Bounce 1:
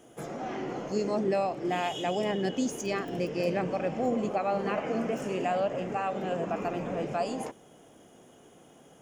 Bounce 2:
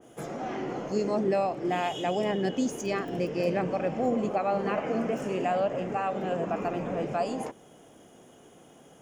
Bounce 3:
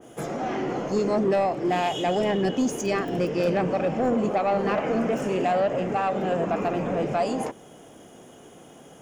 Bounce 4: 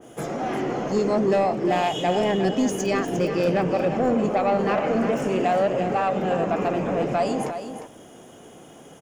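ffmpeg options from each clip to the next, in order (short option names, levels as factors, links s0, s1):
-af "adynamicequalizer=threshold=0.00501:dfrequency=2300:dqfactor=0.7:tfrequency=2300:tqfactor=0.7:attack=5:release=100:ratio=0.375:range=1.5:mode=cutabove:tftype=highshelf,volume=1.19"
-af "asoftclip=type=tanh:threshold=0.0794,volume=2"
-af "aecho=1:1:354:0.335,volume=1.19"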